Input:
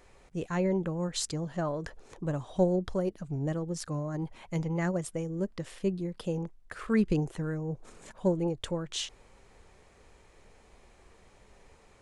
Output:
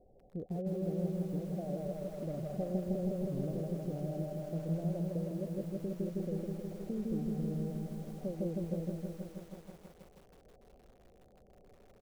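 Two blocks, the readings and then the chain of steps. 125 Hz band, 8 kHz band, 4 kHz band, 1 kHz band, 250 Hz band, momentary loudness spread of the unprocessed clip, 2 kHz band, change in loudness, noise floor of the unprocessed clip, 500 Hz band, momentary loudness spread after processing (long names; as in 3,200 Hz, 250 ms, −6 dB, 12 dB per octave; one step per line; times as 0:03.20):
−3.5 dB, −18.5 dB, below −20 dB, −11.0 dB, −4.5 dB, 11 LU, below −15 dB, −5.5 dB, −59 dBFS, −6.0 dB, 8 LU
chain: low-shelf EQ 140 Hz −4 dB
downward compressor 4 to 1, threshold −37 dBFS, peak gain reduction 14 dB
Chebyshev low-pass with heavy ripple 770 Hz, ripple 3 dB
repeating echo 156 ms, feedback 57%, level −5.5 dB
feedback echo at a low word length 161 ms, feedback 80%, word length 10 bits, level −3.5 dB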